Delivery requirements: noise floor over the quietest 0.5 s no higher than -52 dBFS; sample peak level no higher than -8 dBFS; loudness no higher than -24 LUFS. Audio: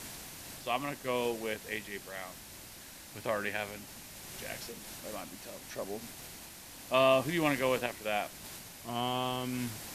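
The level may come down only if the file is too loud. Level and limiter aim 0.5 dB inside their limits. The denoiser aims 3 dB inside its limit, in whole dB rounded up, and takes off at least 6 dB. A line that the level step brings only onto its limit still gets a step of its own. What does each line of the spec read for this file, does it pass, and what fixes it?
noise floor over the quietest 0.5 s -50 dBFS: fail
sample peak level -12.5 dBFS: pass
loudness -34.5 LUFS: pass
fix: noise reduction 6 dB, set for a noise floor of -50 dBFS

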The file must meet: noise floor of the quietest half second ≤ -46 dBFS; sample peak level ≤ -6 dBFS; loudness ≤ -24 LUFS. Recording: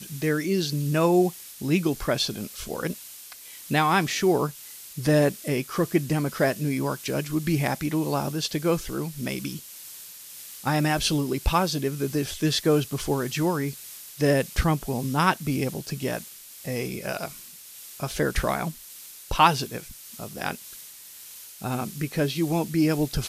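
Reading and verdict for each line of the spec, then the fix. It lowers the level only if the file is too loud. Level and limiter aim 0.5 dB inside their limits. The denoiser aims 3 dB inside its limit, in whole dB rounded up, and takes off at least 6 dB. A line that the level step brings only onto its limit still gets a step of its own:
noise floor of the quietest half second -45 dBFS: fail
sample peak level -4.5 dBFS: fail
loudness -25.5 LUFS: pass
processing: noise reduction 6 dB, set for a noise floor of -45 dBFS; peak limiter -6.5 dBFS

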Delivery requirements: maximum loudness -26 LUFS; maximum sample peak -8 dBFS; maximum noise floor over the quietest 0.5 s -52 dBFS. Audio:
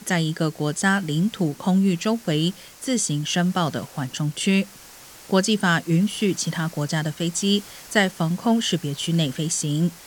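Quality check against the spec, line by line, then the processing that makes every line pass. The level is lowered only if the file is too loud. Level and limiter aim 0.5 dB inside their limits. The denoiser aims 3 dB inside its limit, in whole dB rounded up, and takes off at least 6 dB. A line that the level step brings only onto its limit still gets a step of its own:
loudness -23.0 LUFS: fail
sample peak -5.5 dBFS: fail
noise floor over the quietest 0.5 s -45 dBFS: fail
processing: noise reduction 7 dB, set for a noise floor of -45 dBFS; trim -3.5 dB

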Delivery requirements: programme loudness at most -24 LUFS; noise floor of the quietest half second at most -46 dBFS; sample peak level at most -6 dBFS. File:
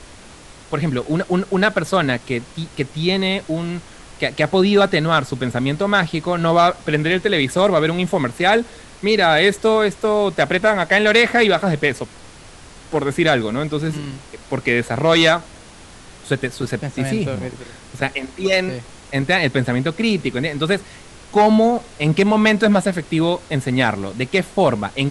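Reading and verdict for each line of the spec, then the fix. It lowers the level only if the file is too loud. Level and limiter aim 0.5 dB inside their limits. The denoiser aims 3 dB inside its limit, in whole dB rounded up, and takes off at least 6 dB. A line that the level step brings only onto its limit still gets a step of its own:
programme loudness -18.0 LUFS: fail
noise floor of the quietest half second -41 dBFS: fail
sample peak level -3.0 dBFS: fail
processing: trim -6.5 dB

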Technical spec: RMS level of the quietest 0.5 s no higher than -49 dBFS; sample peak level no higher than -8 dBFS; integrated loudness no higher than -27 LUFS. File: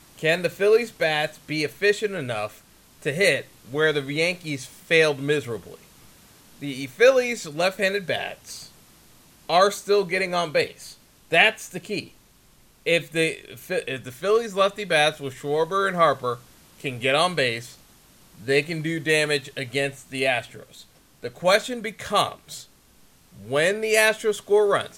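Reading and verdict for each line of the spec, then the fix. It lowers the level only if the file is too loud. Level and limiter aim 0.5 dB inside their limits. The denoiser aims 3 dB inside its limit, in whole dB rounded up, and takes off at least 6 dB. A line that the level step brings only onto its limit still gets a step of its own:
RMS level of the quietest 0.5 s -56 dBFS: pass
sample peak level -3.0 dBFS: fail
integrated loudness -23.0 LUFS: fail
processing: trim -4.5 dB; peak limiter -8.5 dBFS

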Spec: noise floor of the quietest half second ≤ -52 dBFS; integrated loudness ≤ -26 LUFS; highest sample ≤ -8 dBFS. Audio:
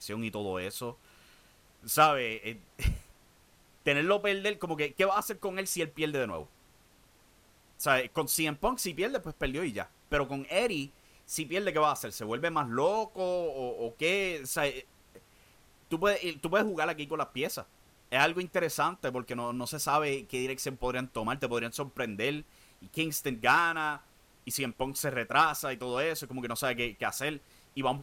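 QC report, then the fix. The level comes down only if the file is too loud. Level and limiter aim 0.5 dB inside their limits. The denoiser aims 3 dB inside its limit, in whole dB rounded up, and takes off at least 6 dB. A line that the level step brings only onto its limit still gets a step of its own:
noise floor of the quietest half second -62 dBFS: pass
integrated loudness -31.0 LUFS: pass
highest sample -11.0 dBFS: pass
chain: none needed

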